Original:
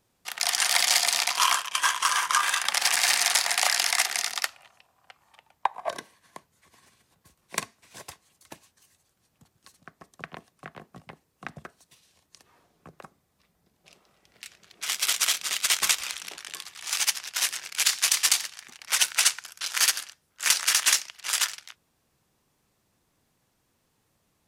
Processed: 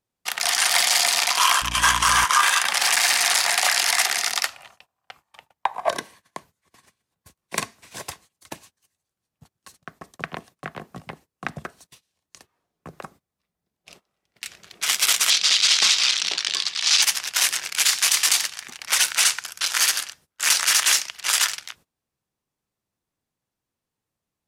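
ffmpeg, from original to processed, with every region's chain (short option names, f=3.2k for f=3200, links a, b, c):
-filter_complex "[0:a]asettb=1/sr,asplit=3[a][b][c];[a]atrim=end=1.624[d];[b]atrim=start=1.62:end=2.25,asetpts=PTS-STARTPTS,afade=t=in:d=0.004:c=qsin,afade=t=out:st=0.626:d=0.004:c=qsin,lowshelf=f=450:g=5.5,aeval=exprs='val(0)+0.00891*(sin(2*PI*60*n/s)+sin(2*PI*2*60*n/s)/2+sin(2*PI*3*60*n/s)/3+sin(2*PI*4*60*n/s)/4+sin(2*PI*5*60*n/s)/5)':c=same[e];[c]atrim=start=2.246[f];[d][e]acrossfade=d=0.004:c1=hsin:c2=qsin[g];[g][f]acrossfade=d=0.004:c1=qsin:c2=hsin,asettb=1/sr,asplit=3[h][i][j];[h]atrim=end=15.304[k];[i]atrim=start=15.3:end=17.02,asetpts=PTS-STARTPTS,afade=t=in:d=0.004:c=qsin,afade=t=out:st=1.716:d=0.004:c=qsin,highpass=130,lowpass=7.1k,equalizer=f=4.4k:w=0.83:g=13[l];[j]atrim=start=17.016[m];[k][l]acrossfade=d=0.004:c1=hsin:c2=qsin[n];[n][m]acrossfade=d=0.004:c1=qsin:c2=hsin,agate=range=-22dB:threshold=-57dB:ratio=16:detection=peak,alimiter=limit=-15dB:level=0:latency=1:release=18,volume=8.5dB"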